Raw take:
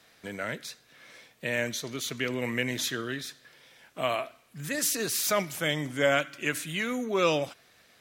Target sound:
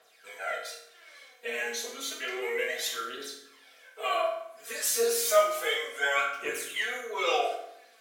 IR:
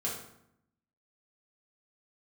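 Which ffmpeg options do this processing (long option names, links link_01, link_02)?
-filter_complex "[0:a]highpass=frequency=440:width=0.5412,highpass=frequency=440:width=1.3066,aphaser=in_gain=1:out_gain=1:delay=4.8:decay=0.77:speed=0.31:type=triangular[link_01];[1:a]atrim=start_sample=2205[link_02];[link_01][link_02]afir=irnorm=-1:irlink=0,volume=-7dB"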